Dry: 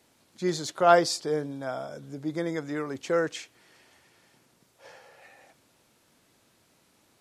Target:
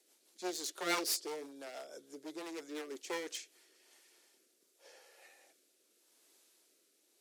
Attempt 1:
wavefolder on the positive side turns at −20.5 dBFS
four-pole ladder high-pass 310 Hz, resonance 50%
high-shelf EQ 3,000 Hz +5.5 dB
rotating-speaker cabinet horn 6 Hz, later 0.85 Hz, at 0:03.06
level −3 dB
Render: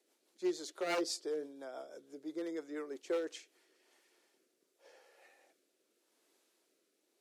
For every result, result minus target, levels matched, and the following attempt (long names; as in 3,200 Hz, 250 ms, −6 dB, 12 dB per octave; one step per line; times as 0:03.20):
wavefolder on the positive side: distortion −12 dB; 8,000 Hz band −7.0 dB
wavefolder on the positive side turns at −31 dBFS
four-pole ladder high-pass 310 Hz, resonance 50%
high-shelf EQ 3,000 Hz +5.5 dB
rotating-speaker cabinet horn 6 Hz, later 0.85 Hz, at 0:03.06
level −3 dB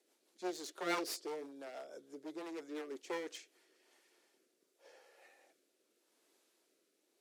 8,000 Hz band −5.5 dB
wavefolder on the positive side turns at −31 dBFS
four-pole ladder high-pass 310 Hz, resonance 50%
high-shelf EQ 3,000 Hz +16 dB
rotating-speaker cabinet horn 6 Hz, later 0.85 Hz, at 0:03.06
level −3 dB